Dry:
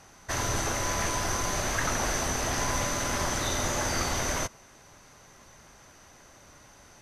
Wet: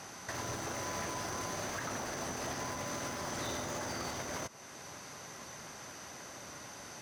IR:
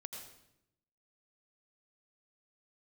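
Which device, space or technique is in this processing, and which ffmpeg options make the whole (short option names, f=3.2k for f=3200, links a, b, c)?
broadcast voice chain: -af "highpass=120,deesser=0.8,acompressor=threshold=-38dB:ratio=3,equalizer=f=4.9k:t=o:w=0.35:g=2.5,alimiter=level_in=10.5dB:limit=-24dB:level=0:latency=1:release=473,volume=-10.5dB,volume=6dB"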